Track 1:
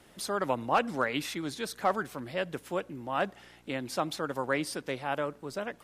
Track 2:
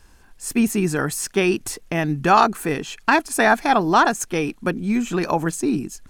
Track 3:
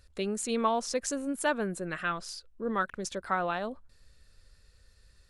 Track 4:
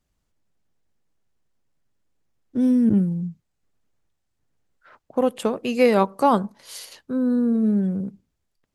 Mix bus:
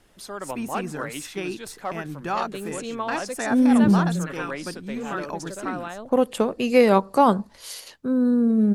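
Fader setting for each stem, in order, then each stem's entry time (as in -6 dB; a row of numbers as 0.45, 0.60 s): -3.5, -12.0, -2.5, +1.0 dB; 0.00, 0.00, 2.35, 0.95 s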